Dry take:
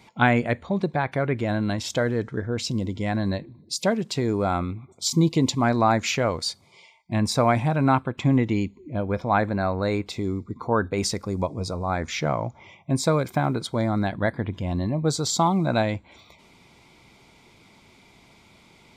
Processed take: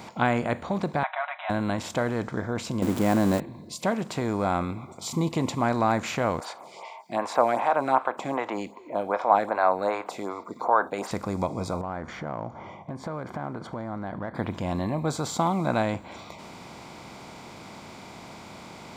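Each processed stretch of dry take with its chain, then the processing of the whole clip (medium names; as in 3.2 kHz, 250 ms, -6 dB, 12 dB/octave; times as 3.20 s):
1.03–1.50 s: block-companded coder 7-bit + brick-wall FIR band-pass 600–4000 Hz + comb 5.5 ms, depth 95%
2.82–3.40 s: zero-crossing glitches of -22.5 dBFS + peaking EQ 310 Hz +13 dB 2.1 oct
6.40–11.11 s: high-pass 510 Hz + peaking EQ 840 Hz +13.5 dB 2.1 oct + lamp-driven phase shifter 2.6 Hz
11.81–14.35 s: Savitzky-Golay filter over 41 samples + compression 5:1, threshold -34 dBFS
whole clip: spectral levelling over time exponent 0.6; dynamic bell 5 kHz, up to -6 dB, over -42 dBFS, Q 1.8; trim -8 dB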